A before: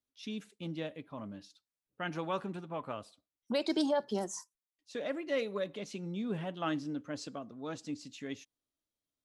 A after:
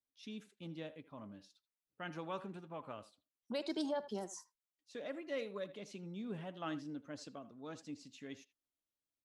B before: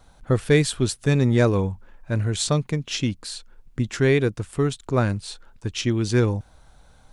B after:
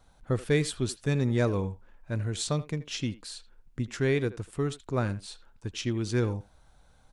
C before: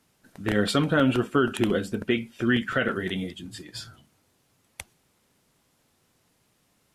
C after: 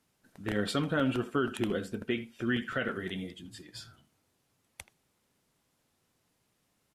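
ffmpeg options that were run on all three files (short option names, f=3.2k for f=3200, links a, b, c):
-filter_complex "[0:a]asplit=2[a][b];[b]adelay=80,highpass=300,lowpass=3.4k,asoftclip=type=hard:threshold=-14dB,volume=-15dB[c];[a][c]amix=inputs=2:normalize=0,volume=-7.5dB"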